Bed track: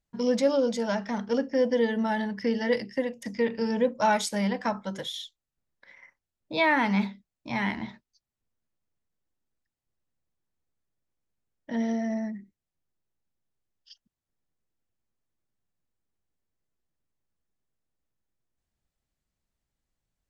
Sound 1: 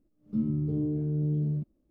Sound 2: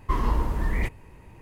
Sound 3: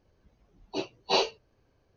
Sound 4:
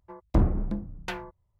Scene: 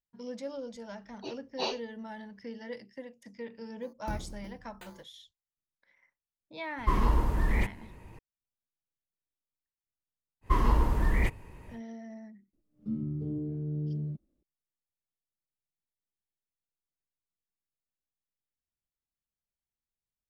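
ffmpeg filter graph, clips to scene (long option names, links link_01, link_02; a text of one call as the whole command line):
ffmpeg -i bed.wav -i cue0.wav -i cue1.wav -i cue2.wav -i cue3.wav -filter_complex "[2:a]asplit=2[link_01][link_02];[0:a]volume=-15.5dB[link_03];[4:a]acrusher=samples=8:mix=1:aa=0.000001[link_04];[1:a]bandreject=frequency=960:width=15[link_05];[3:a]atrim=end=1.96,asetpts=PTS-STARTPTS,volume=-8.5dB,afade=type=in:duration=0.004:curve=hsin,afade=type=out:start_time=1.956:duration=0.004:curve=hsin,adelay=490[link_06];[link_04]atrim=end=1.59,asetpts=PTS-STARTPTS,volume=-16dB,afade=type=in:duration=0.004:curve=hsin,afade=type=out:start_time=1.586:duration=0.004:curve=hsin,adelay=164493S[link_07];[link_01]atrim=end=1.41,asetpts=PTS-STARTPTS,volume=-1.5dB,afade=type=in:duration=0.004:curve=hsin,afade=type=out:start_time=1.406:duration=0.004:curve=hsin,adelay=6780[link_08];[link_02]atrim=end=1.41,asetpts=PTS-STARTPTS,volume=-0.5dB,afade=type=in:duration=0.1,afade=type=out:start_time=1.31:duration=0.1,adelay=10410[link_09];[link_05]atrim=end=1.9,asetpts=PTS-STARTPTS,volume=-5.5dB,afade=type=in:duration=0.004:curve=hsin,afade=type=out:start_time=1.896:duration=0.004:curve=hsin,adelay=12530[link_10];[link_03][link_06][link_07][link_08][link_09][link_10]amix=inputs=6:normalize=0" out.wav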